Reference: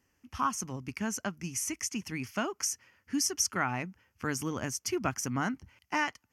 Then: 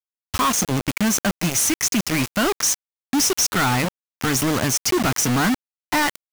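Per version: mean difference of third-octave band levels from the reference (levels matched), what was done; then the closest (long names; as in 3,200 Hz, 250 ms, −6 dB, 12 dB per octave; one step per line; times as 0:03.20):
9.5 dB: log-companded quantiser 2 bits
level +8 dB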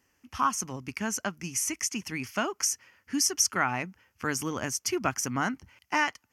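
1.5 dB: low-shelf EQ 300 Hz −6 dB
level +4.5 dB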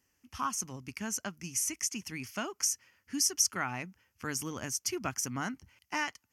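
2.5 dB: high-shelf EQ 2,900 Hz +8.5 dB
level −5 dB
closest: second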